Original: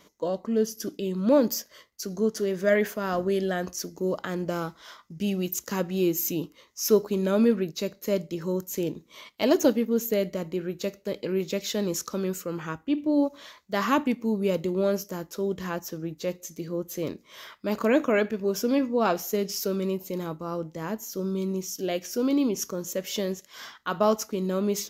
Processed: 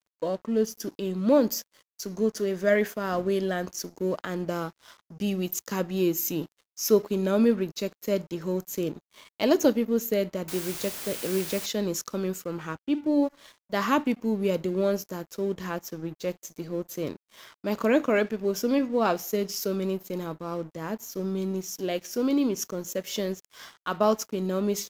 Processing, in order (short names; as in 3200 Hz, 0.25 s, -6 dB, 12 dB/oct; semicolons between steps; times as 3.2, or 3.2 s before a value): 10.48–11.66 requantised 6-bit, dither triangular; crossover distortion -48.5 dBFS